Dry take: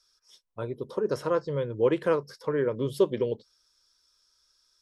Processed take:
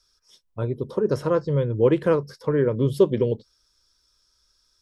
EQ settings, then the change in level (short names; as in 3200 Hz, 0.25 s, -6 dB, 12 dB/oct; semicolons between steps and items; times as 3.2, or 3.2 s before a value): low shelf 270 Hz +12 dB; +1.5 dB